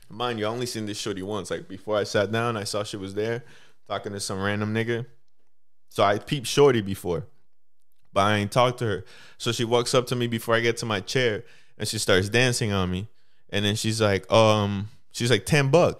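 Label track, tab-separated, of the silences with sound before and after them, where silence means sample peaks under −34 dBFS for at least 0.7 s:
5.040000	5.960000	silence
7.240000	8.160000	silence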